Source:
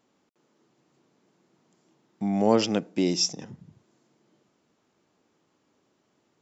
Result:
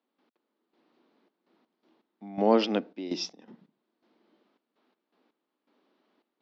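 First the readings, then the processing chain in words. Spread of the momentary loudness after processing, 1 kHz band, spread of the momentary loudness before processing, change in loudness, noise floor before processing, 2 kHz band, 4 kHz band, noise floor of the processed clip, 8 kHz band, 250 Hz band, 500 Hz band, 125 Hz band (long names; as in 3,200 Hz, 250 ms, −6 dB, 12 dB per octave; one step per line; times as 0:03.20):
14 LU, −0.5 dB, 9 LU, −3.0 dB, −72 dBFS, −2.0 dB, −6.5 dB, −84 dBFS, can't be measured, −4.5 dB, −1.5 dB, −10.0 dB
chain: elliptic band-pass filter 230–4,200 Hz, stop band 40 dB
gate pattern ".x..xxx.x" 82 BPM −12 dB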